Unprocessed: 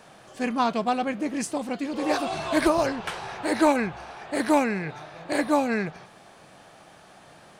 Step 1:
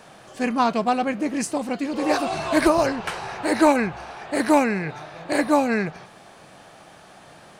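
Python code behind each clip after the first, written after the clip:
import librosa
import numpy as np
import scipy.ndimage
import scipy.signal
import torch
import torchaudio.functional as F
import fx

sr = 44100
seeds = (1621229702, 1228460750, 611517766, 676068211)

y = fx.dynamic_eq(x, sr, hz=3400.0, q=7.7, threshold_db=-57.0, ratio=4.0, max_db=-6)
y = y * librosa.db_to_amplitude(3.5)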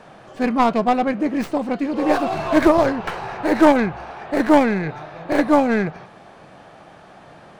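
y = fx.tracing_dist(x, sr, depth_ms=0.2)
y = fx.lowpass(y, sr, hz=1800.0, slope=6)
y = y * librosa.db_to_amplitude(4.0)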